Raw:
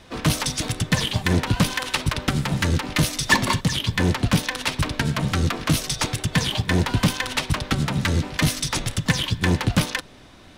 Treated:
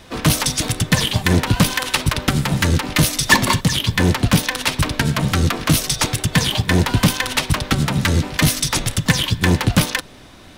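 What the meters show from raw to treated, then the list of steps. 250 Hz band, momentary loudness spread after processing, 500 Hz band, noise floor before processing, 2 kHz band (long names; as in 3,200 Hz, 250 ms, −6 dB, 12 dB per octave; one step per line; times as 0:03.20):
+4.5 dB, 4 LU, +4.5 dB, −47 dBFS, +4.5 dB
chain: high-shelf EQ 12,000 Hz +10 dB
level +4.5 dB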